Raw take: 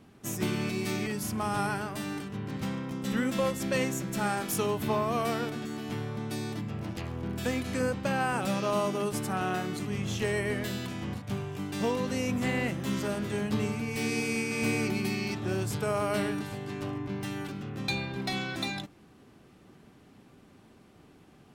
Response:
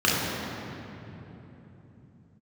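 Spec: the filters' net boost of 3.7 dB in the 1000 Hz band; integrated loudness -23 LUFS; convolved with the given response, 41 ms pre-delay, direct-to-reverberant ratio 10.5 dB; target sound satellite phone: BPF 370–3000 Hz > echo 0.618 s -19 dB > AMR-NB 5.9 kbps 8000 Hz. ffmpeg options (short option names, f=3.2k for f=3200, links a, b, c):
-filter_complex "[0:a]equalizer=f=1k:t=o:g=5,asplit=2[a][b];[1:a]atrim=start_sample=2205,adelay=41[c];[b][c]afir=irnorm=-1:irlink=0,volume=-29dB[d];[a][d]amix=inputs=2:normalize=0,highpass=370,lowpass=3k,aecho=1:1:618:0.112,volume=11.5dB" -ar 8000 -c:a libopencore_amrnb -b:a 5900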